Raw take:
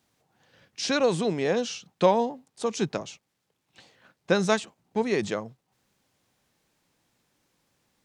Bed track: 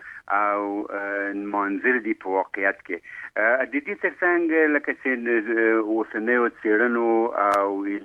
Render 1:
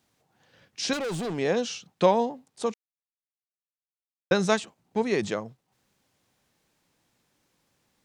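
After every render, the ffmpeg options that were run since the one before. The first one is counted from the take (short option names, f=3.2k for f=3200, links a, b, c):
-filter_complex "[0:a]asettb=1/sr,asplit=3[a][b][c];[a]atrim=end=0.934[d];[b]atrim=start=0.93:end=1.38,asetpts=PTS-STARTPTS,afade=t=in:d=0.004:c=qsin,afade=t=out:st=0.446:d=0.004:c=qsin,volume=28.5dB,asoftclip=hard,volume=-28.5dB[e];[c]atrim=start=1.376[f];[d][e]acrossfade=d=0.004:c1=hsin:c2=qsin[g];[g][f]acrossfade=d=0.004:c1=qsin:c2=hsin,asplit=3[h][i][j];[h]atrim=end=2.74,asetpts=PTS-STARTPTS,afade=t=out:st=2.736:d=0.004:c=hsin[k];[i]atrim=start=2.74:end=4.31,asetpts=PTS-STARTPTS,volume=0[l];[j]atrim=start=4.31,asetpts=PTS-STARTPTS,afade=t=in:d=0.004:c=hsin[m];[k][l][m]concat=n=3:v=0:a=1"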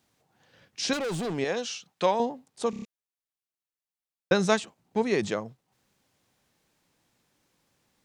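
-filter_complex "[0:a]asettb=1/sr,asplit=3[a][b][c];[a]atrim=end=1.444[d];[b]atrim=start=1.44:end=2.2,asetpts=PTS-STARTPTS,afade=t=in:d=0.004:c=qsin,afade=t=out:st=0.756:d=0.004:c=qsin,lowshelf=f=480:g=-10[e];[c]atrim=start=2.196[f];[d][e]acrossfade=d=0.004:c1=hsin:c2=qsin[g];[g][f]acrossfade=d=0.004:c1=qsin:c2=hsin,asplit=6[h][i][j][k][l][m];[h]atrim=end=2.732[n];[i]atrim=start=2.698:end=2.732[o];[j]atrim=start=2.698:end=2.732[p];[k]atrim=start=2.698:end=2.732[q];[l]atrim=start=2.698:end=2.732[r];[m]atrim=start=2.848[s];[n][o]acrossfade=d=0.004:c1=hsin:c2=hsin[t];[t][p]acrossfade=d=0.004:c1=hsin:c2=hsin[u];[u][q]acrossfade=d=0.004:c1=hsin:c2=hsin[v];[v][r]acrossfade=d=0.004:c1=hsin:c2=hsin[w];[w][s]acrossfade=d=0.004:c1=hsin:c2=hsin"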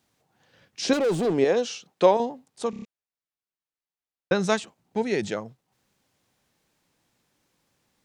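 -filter_complex "[0:a]asettb=1/sr,asplit=3[a][b][c];[a]atrim=end=0.824[d];[b]atrim=start=0.82:end=2.17,asetpts=PTS-STARTPTS,afade=t=in:d=0.004:c=qsin,afade=t=out:st=1.346:d=0.004:c=qsin,equalizer=f=400:w=0.74:g=9.5[e];[c]atrim=start=2.166[f];[d][e]acrossfade=d=0.004:c1=hsin:c2=qsin[g];[g][f]acrossfade=d=0.004:c1=qsin:c2=hsin,asettb=1/sr,asplit=3[h][i][j];[h]atrim=end=2.674[k];[i]atrim=start=2.67:end=4.44,asetpts=PTS-STARTPTS,afade=t=in:d=0.004:c=qsin,afade=t=out:st=1.766:d=0.004:c=qsin,lowpass=f=3.9k:p=1[l];[j]atrim=start=4.436[m];[k][l]acrossfade=d=0.004:c1=hsin:c2=qsin[n];[n][m]acrossfade=d=0.004:c1=qsin:c2=hsin,asettb=1/sr,asplit=3[o][p][q];[o]atrim=end=4.974[r];[p]atrim=start=4.97:end=5.37,asetpts=PTS-STARTPTS,afade=t=in:d=0.004:c=qsin,afade=t=out:st=0.396:d=0.004:c=qsin,asuperstop=centerf=1100:order=4:qfactor=3.6[s];[q]atrim=start=5.366[t];[r][s]acrossfade=d=0.004:c1=hsin:c2=qsin[u];[u][t]acrossfade=d=0.004:c1=qsin:c2=hsin"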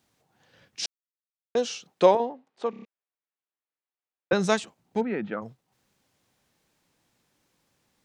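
-filter_complex "[0:a]asettb=1/sr,asplit=3[a][b][c];[a]atrim=end=2.154[d];[b]atrim=start=2.15:end=4.33,asetpts=PTS-STARTPTS,afade=t=in:d=0.004:c=qsin,afade=t=out:st=2.176:d=0.004:c=qsin,highpass=290,lowpass=2.7k[e];[c]atrim=start=4.326[f];[d][e]acrossfade=d=0.004:c1=hsin:c2=qsin[g];[g][f]acrossfade=d=0.004:c1=qsin:c2=hsin,asplit=3[h][i][j];[h]afade=t=out:st=5:d=0.02[k];[i]highpass=200,equalizer=f=220:t=q:w=4:g=4,equalizer=f=390:t=q:w=4:g=-7,equalizer=f=610:t=q:w=4:g=-5,equalizer=f=870:t=q:w=4:g=-3,equalizer=f=1.3k:t=q:w=4:g=5,equalizer=f=2k:t=q:w=4:g=-5,lowpass=f=2.2k:w=0.5412,lowpass=f=2.2k:w=1.3066,afade=t=in:st=5:d=0.02,afade=t=out:st=5.41:d=0.02[l];[j]afade=t=in:st=5.41:d=0.02[m];[k][l][m]amix=inputs=3:normalize=0,asplit=3[n][o][p];[n]atrim=end=0.86,asetpts=PTS-STARTPTS,afade=t=out:st=0.856:d=0.004:c=hsin[q];[o]atrim=start=0.86:end=1.55,asetpts=PTS-STARTPTS,volume=0[r];[p]atrim=start=1.55,asetpts=PTS-STARTPTS,afade=t=in:d=0.004:c=hsin[s];[q][r][s]concat=n=3:v=0:a=1"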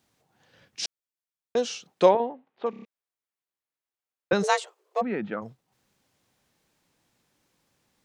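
-filter_complex "[0:a]asplit=3[a][b][c];[a]afade=t=out:st=2.08:d=0.02[d];[b]lowpass=f=3.4k:w=0.5412,lowpass=f=3.4k:w=1.3066,afade=t=in:st=2.08:d=0.02,afade=t=out:st=2.65:d=0.02[e];[c]afade=t=in:st=2.65:d=0.02[f];[d][e][f]amix=inputs=3:normalize=0,asplit=3[g][h][i];[g]afade=t=out:st=4.42:d=0.02[j];[h]afreqshift=260,afade=t=in:st=4.42:d=0.02,afade=t=out:st=5.01:d=0.02[k];[i]afade=t=in:st=5.01:d=0.02[l];[j][k][l]amix=inputs=3:normalize=0"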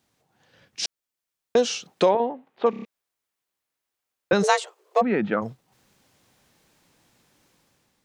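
-af "alimiter=limit=-16.5dB:level=0:latency=1:release=400,dynaudnorm=f=680:g=3:m=8.5dB"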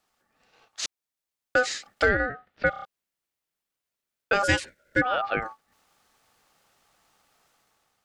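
-filter_complex "[0:a]acrossover=split=170[a][b];[a]aeval=exprs='clip(val(0),-1,0.00841)':c=same[c];[c][b]amix=inputs=2:normalize=0,aeval=exprs='val(0)*sin(2*PI*1000*n/s)':c=same"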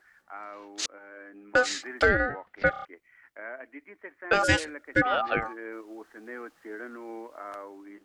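-filter_complex "[1:a]volume=-20dB[a];[0:a][a]amix=inputs=2:normalize=0"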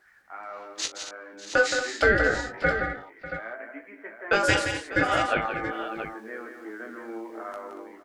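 -filter_complex "[0:a]asplit=2[a][b];[b]adelay=18,volume=-5dB[c];[a][c]amix=inputs=2:normalize=0,aecho=1:1:41|170|232|596|678:0.211|0.422|0.266|0.158|0.316"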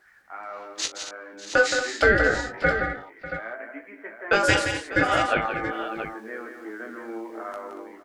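-af "volume=2dB"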